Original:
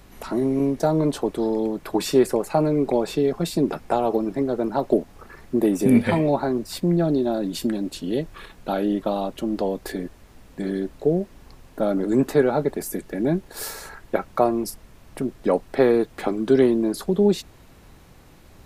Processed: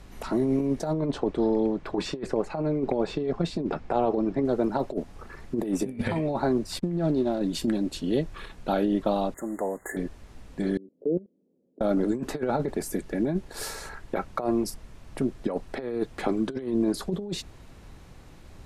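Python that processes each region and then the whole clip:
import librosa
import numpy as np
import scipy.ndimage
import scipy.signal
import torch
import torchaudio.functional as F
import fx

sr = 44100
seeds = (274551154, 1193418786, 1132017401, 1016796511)

y = fx.chain(x, sr, fx.lowpass(hz=7500.0, slope=12),
    fx.high_shelf(hz=5600.0, db=-11.5), at=(0.93, 4.45))
y = fx.chain(y, sr, fx.backlash(play_db=-38.0),
    fx.upward_expand(threshold_db=-31.0, expansion=1.5), at=(6.79, 7.41))
y = fx.chain(y, sr, fx.median_filter(points=5),
    fx.brickwall_bandstop(low_hz=2100.0, high_hz=6600.0),
    fx.tilt_eq(slope=4.0), at=(9.34, 9.97))
y = fx.chain(y, sr, fx.cheby1_bandpass(low_hz=190.0, high_hz=520.0, order=3),
    fx.level_steps(step_db=23), at=(10.77, 11.81))
y = scipy.signal.sosfilt(scipy.signal.butter(2, 9800.0, 'lowpass', fs=sr, output='sos'), y)
y = fx.low_shelf(y, sr, hz=110.0, db=5.0)
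y = fx.over_compress(y, sr, threshold_db=-21.0, ratio=-0.5)
y = F.gain(torch.from_numpy(y), -3.5).numpy()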